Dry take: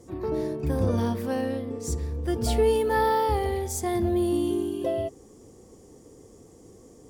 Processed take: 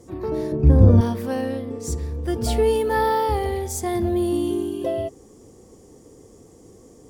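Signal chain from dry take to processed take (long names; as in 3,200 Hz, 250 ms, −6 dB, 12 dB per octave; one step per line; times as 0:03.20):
0:00.52–0:01.01: spectral tilt −3.5 dB per octave
level +2.5 dB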